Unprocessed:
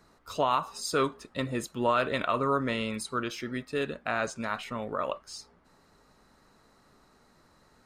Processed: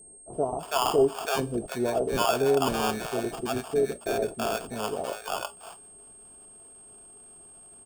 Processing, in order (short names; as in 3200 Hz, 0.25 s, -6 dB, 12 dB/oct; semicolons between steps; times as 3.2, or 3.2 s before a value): sample-rate reducer 2000 Hz, jitter 0%; bands offset in time lows, highs 0.33 s, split 670 Hz; whine 8500 Hz -48 dBFS; small resonant body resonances 410/680 Hz, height 11 dB, ringing for 40 ms